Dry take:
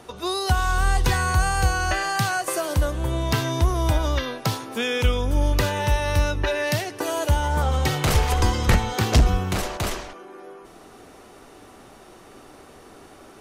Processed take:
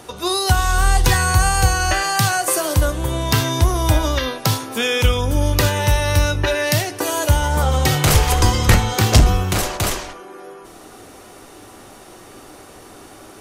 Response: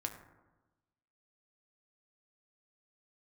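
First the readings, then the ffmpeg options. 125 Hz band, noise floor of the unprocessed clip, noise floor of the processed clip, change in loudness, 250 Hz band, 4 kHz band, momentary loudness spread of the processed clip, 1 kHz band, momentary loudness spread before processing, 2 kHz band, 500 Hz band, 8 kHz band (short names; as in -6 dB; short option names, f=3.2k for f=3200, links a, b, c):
+5.5 dB, -47 dBFS, -42 dBFS, +5.5 dB, +4.5 dB, +7.0 dB, 6 LU, +4.5 dB, 7 LU, +5.0 dB, +4.5 dB, +9.5 dB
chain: -filter_complex "[0:a]asplit=2[a][b];[1:a]atrim=start_sample=2205,atrim=end_sample=3528,highshelf=f=4.3k:g=11[c];[b][c]afir=irnorm=-1:irlink=0,volume=2.5dB[d];[a][d]amix=inputs=2:normalize=0,volume=-2dB"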